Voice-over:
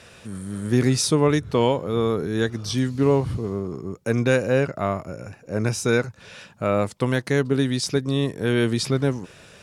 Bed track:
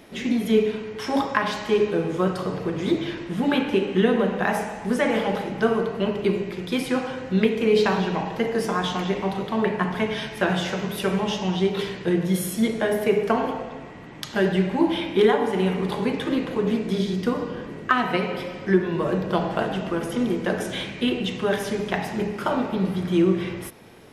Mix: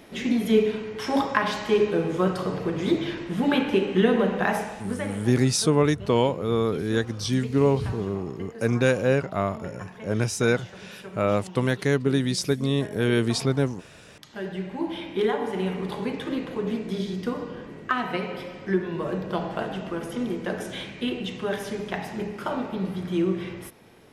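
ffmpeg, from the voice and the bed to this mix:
-filter_complex "[0:a]adelay=4550,volume=-1.5dB[a];[1:a]volume=12dB,afade=t=out:st=4.45:d=0.74:silence=0.141254,afade=t=in:st=14.04:d=1.48:silence=0.237137[b];[a][b]amix=inputs=2:normalize=0"

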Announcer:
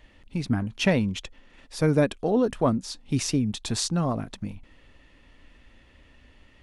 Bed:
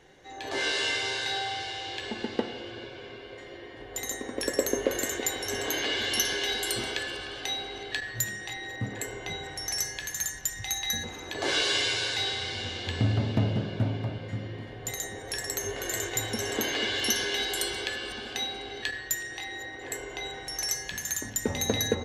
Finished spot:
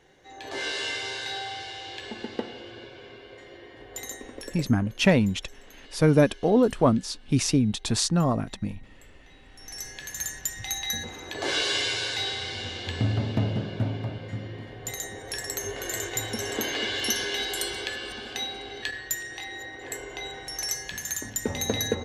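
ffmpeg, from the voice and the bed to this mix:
-filter_complex "[0:a]adelay=4200,volume=2.5dB[a];[1:a]volume=20dB,afade=t=out:st=3.99:d=0.76:silence=0.1,afade=t=in:st=9.48:d=0.85:silence=0.0749894[b];[a][b]amix=inputs=2:normalize=0"

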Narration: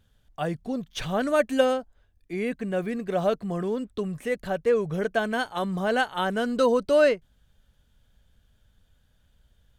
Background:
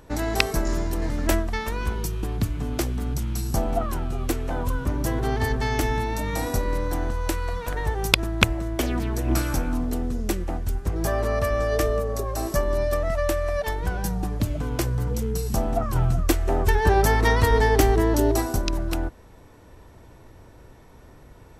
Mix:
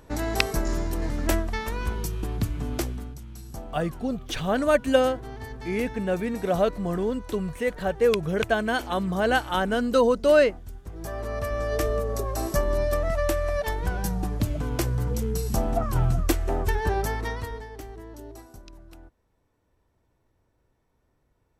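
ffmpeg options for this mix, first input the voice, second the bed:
-filter_complex "[0:a]adelay=3350,volume=1.5dB[a];[1:a]volume=11dB,afade=t=out:st=2.77:d=0.38:silence=0.251189,afade=t=in:st=10.87:d=1.29:silence=0.223872,afade=t=out:st=16.08:d=1.58:silence=0.0891251[b];[a][b]amix=inputs=2:normalize=0"

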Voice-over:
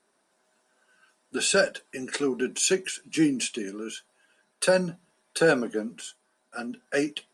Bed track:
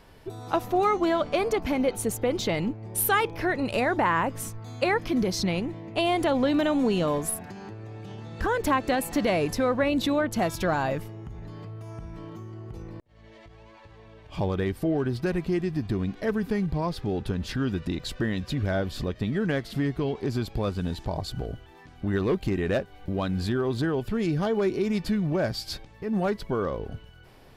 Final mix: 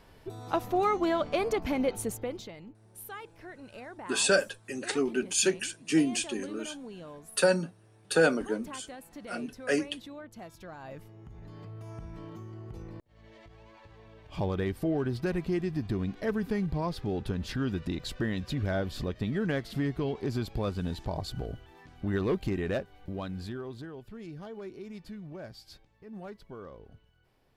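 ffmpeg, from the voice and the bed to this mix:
-filter_complex "[0:a]adelay=2750,volume=-2dB[a];[1:a]volume=13dB,afade=t=out:st=1.92:d=0.6:silence=0.149624,afade=t=in:st=10.79:d=1.06:silence=0.149624,afade=t=out:st=22.38:d=1.5:silence=0.211349[b];[a][b]amix=inputs=2:normalize=0"

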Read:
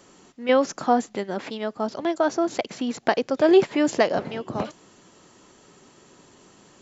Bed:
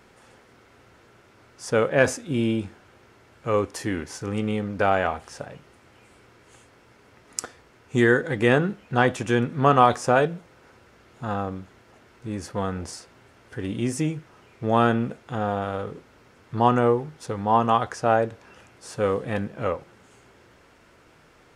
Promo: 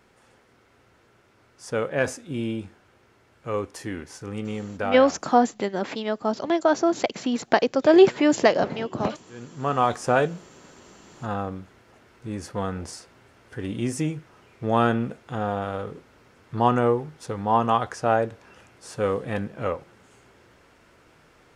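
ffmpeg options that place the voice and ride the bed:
-filter_complex "[0:a]adelay=4450,volume=2dB[a];[1:a]volume=21dB,afade=t=out:st=4.75:d=0.6:silence=0.0794328,afade=t=in:st=9.31:d=0.85:silence=0.0501187[b];[a][b]amix=inputs=2:normalize=0"

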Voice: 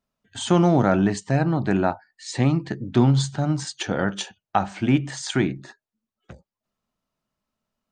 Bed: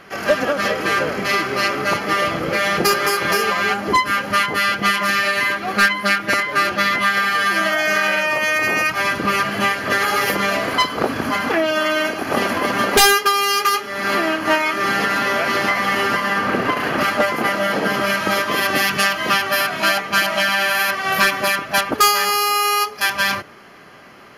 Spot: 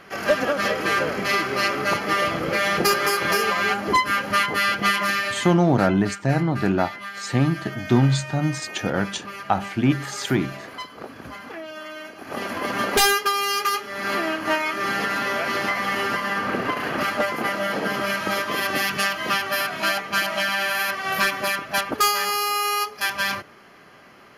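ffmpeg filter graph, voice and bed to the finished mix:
-filter_complex "[0:a]adelay=4950,volume=0dB[a];[1:a]volume=9dB,afade=t=out:st=5.01:d=0.55:silence=0.188365,afade=t=in:st=12.13:d=0.65:silence=0.251189[b];[a][b]amix=inputs=2:normalize=0"

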